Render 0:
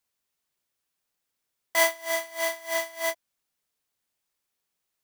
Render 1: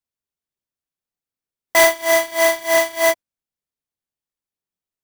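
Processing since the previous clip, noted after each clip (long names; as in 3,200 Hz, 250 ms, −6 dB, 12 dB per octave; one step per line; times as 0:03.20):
low-shelf EQ 480 Hz +9.5 dB
leveller curve on the samples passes 3
noise reduction from a noise print of the clip's start 7 dB
level +1 dB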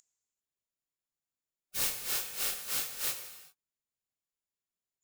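steady tone 7,000 Hz −32 dBFS
gate on every frequency bin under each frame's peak −30 dB weak
reverb whose tail is shaped and stops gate 420 ms falling, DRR 6 dB
level −7 dB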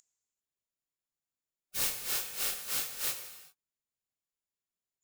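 no processing that can be heard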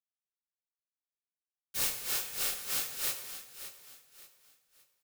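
centre clipping without the shift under −46.5 dBFS
repeating echo 574 ms, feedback 33%, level −12 dB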